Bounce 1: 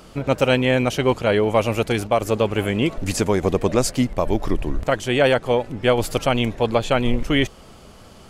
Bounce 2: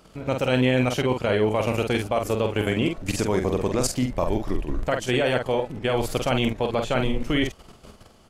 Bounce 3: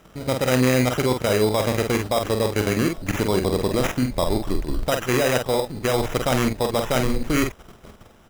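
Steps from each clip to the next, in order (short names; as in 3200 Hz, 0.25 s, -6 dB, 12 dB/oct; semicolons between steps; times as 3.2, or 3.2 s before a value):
level quantiser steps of 11 dB; doubler 47 ms -5.5 dB
sample-and-hold 10×; gain +2 dB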